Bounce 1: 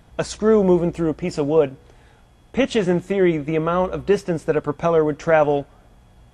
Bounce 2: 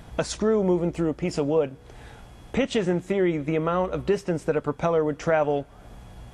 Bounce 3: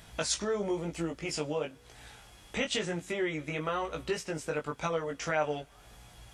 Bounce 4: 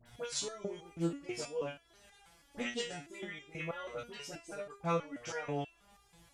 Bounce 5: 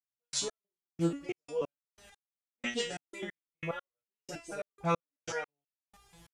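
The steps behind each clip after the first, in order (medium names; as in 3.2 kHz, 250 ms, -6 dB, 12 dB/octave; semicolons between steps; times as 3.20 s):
compression 2:1, threshold -36 dBFS, peak gain reduction 14 dB; trim +6.5 dB
chorus 0.99 Hz, delay 18 ms, depth 2.1 ms; tilt shelf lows -7.5 dB, about 1.4 kHz; trim -1 dB
phase dispersion highs, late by 61 ms, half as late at 1.5 kHz; resonator arpeggio 6.2 Hz 120–400 Hz; trim +5 dB
trance gate "..x...xx.x" 91 bpm -60 dB; trim +4 dB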